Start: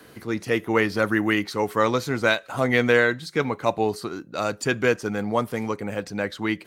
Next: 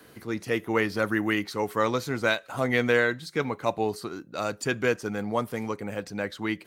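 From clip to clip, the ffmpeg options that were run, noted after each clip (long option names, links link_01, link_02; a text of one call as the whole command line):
ffmpeg -i in.wav -af "highshelf=frequency=12000:gain=4.5,volume=-4dB" out.wav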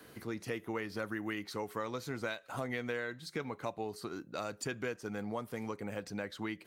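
ffmpeg -i in.wav -af "acompressor=threshold=-33dB:ratio=4,volume=-3dB" out.wav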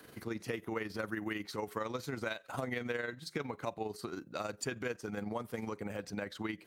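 ffmpeg -i in.wav -af "tremolo=f=22:d=0.519,volume=2.5dB" out.wav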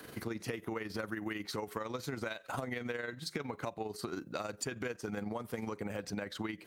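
ffmpeg -i in.wav -af "acompressor=threshold=-40dB:ratio=6,volume=5.5dB" out.wav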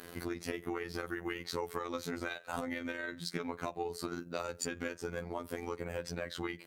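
ffmpeg -i in.wav -af "afftfilt=real='hypot(re,im)*cos(PI*b)':imag='0':win_size=2048:overlap=0.75,volume=4dB" out.wav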